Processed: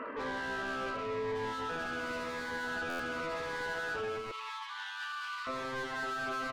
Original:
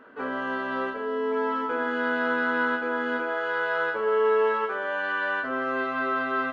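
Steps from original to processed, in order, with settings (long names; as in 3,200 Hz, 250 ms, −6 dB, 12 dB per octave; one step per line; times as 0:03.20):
linear-phase brick-wall low-pass 3,200 Hz
mid-hump overdrive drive 28 dB, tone 2,100 Hz, clips at −13 dBFS
0:04.31–0:05.47: Chebyshev high-pass with heavy ripple 820 Hz, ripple 9 dB
downward compressor, threshold −27 dBFS, peak gain reduction 9.5 dB
far-end echo of a speakerphone 180 ms, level −22 dB
brickwall limiter −28 dBFS, peak gain reduction 7.5 dB
buffer that repeats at 0:02.89, samples 512, times 8
phaser whose notches keep moving one way falling 0.91 Hz
level −2 dB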